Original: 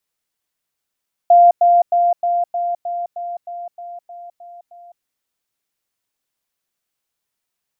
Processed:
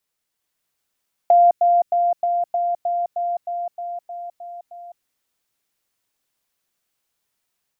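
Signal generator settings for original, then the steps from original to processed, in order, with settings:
level ladder 697 Hz -5.5 dBFS, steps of -3 dB, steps 12, 0.21 s 0.10 s
dynamic EQ 770 Hz, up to -7 dB, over -24 dBFS, Q 0.73; AGC gain up to 3.5 dB

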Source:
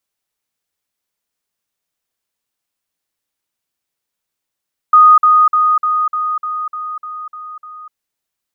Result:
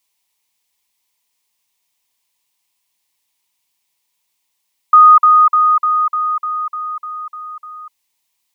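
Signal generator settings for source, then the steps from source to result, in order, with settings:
level ladder 1240 Hz -3 dBFS, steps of -3 dB, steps 10, 0.25 s 0.05 s
EQ curve 660 Hz 0 dB, 980 Hz +12 dB, 1400 Hz -5 dB, 2100 Hz +10 dB

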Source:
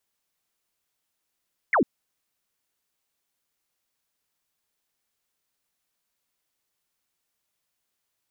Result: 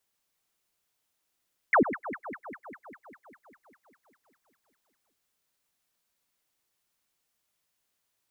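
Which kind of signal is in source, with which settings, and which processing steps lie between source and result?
laser zap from 2300 Hz, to 200 Hz, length 0.10 s sine, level -17 dB
echo with dull and thin repeats by turns 0.1 s, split 1300 Hz, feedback 84%, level -11.5 dB

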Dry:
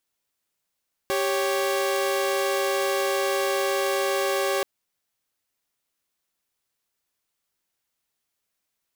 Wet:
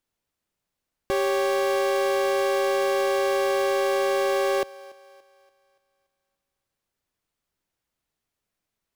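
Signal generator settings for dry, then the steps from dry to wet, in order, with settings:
chord G4/C#5 saw, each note -22.5 dBFS 3.53 s
tilt -2 dB/oct; thinning echo 0.287 s, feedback 45%, high-pass 290 Hz, level -20.5 dB

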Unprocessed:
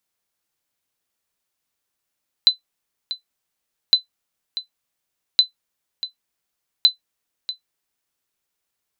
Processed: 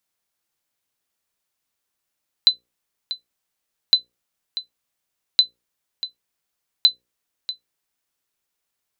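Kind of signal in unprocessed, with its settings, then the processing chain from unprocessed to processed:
sonar ping 4020 Hz, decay 0.12 s, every 1.46 s, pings 4, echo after 0.64 s, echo -14 dB -3.5 dBFS
notches 60/120/180/240/300/360/420/480/540 Hz

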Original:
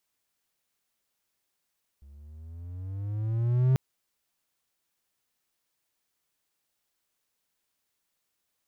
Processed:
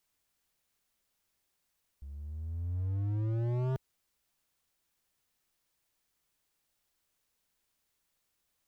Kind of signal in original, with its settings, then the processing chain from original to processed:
gliding synth tone triangle, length 1.74 s, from 68.3 Hz, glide +11.5 st, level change +30.5 dB, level -16 dB
low shelf 89 Hz +10 dB; hard clip -30.5 dBFS

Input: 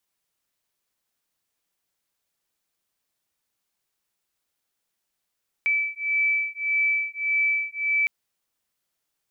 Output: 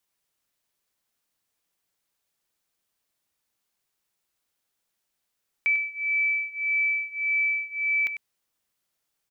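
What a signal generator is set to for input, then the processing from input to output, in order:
beating tones 2310 Hz, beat 1.7 Hz, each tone -24.5 dBFS 2.41 s
echo 98 ms -11.5 dB

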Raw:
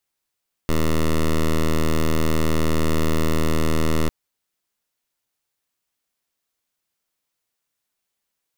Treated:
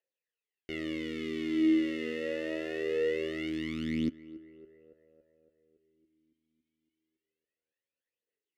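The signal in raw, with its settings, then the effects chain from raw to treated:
pulse 79.4 Hz, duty 10% -18 dBFS 3.40 s
phaser 0.24 Hz, delay 4 ms, feedback 69%; darkening echo 0.28 s, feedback 65%, low-pass 2100 Hz, level -19 dB; vowel sweep e-i 0.38 Hz

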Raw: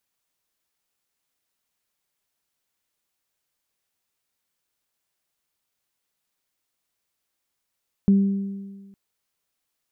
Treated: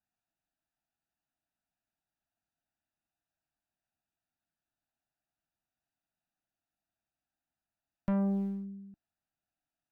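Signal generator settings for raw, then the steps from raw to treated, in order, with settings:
additive tone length 0.86 s, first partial 197 Hz, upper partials -18 dB, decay 1.49 s, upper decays 1.51 s, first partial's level -11.5 dB
Wiener smoothing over 41 samples; EQ curve 310 Hz 0 dB, 480 Hz -16 dB, 680 Hz +9 dB; tube stage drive 27 dB, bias 0.55

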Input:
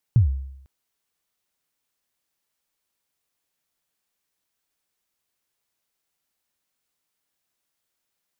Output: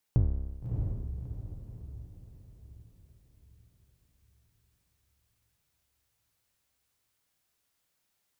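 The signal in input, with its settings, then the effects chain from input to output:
kick drum length 0.50 s, from 130 Hz, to 67 Hz, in 0.118 s, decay 0.77 s, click off, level -9.5 dB
octaver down 1 oct, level -3 dB; compressor 2:1, threshold -29 dBFS; on a send: diffused feedback echo 0.63 s, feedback 44%, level -4 dB

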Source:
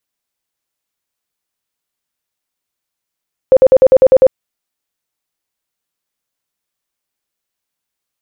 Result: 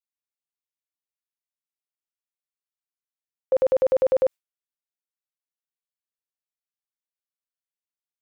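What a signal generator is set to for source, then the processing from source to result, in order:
tone bursts 523 Hz, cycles 25, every 0.10 s, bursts 8, -2 dBFS
gate with hold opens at -3 dBFS; low shelf 470 Hz -12 dB; limiter -14.5 dBFS

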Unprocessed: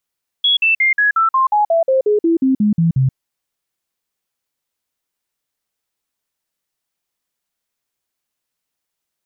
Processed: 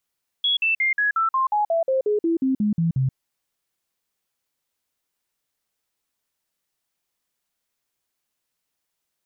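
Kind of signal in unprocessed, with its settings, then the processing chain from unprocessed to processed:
stepped sine 3350 Hz down, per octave 3, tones 15, 0.13 s, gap 0.05 s -10.5 dBFS
limiter -17.5 dBFS

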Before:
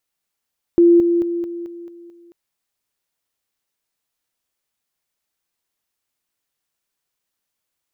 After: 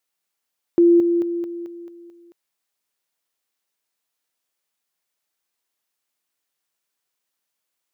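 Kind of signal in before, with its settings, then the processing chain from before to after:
level ladder 343 Hz -7.5 dBFS, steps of -6 dB, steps 7, 0.22 s 0.00 s
HPF 270 Hz 6 dB/oct

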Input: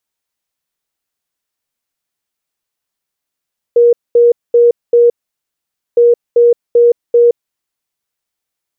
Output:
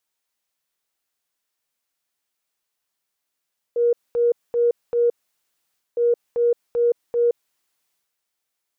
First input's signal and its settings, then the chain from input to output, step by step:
beep pattern sine 475 Hz, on 0.17 s, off 0.22 s, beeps 4, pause 0.87 s, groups 2, -4 dBFS
low shelf 260 Hz -7.5 dB; limiter -13.5 dBFS; transient shaper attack -6 dB, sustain +6 dB

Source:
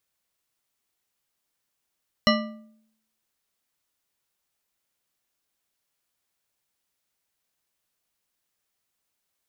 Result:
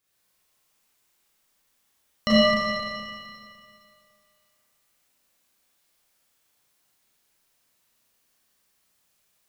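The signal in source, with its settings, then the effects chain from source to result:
metal hit bar, lowest mode 220 Hz, modes 7, decay 0.73 s, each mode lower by 1 dB, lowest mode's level -18 dB
limiter -13 dBFS; Schroeder reverb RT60 2.3 s, combs from 29 ms, DRR -9.5 dB

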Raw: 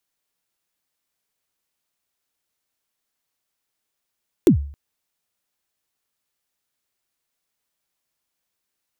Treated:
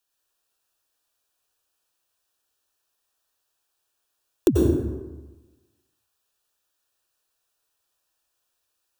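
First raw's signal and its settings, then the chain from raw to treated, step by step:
kick drum length 0.27 s, from 410 Hz, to 71 Hz, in 0.102 s, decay 0.49 s, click on, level -6 dB
Butterworth band-stop 2100 Hz, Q 4.5; bell 180 Hz -15 dB 0.82 oct; plate-style reverb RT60 1.2 s, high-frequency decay 0.55×, pre-delay 80 ms, DRR -1.5 dB

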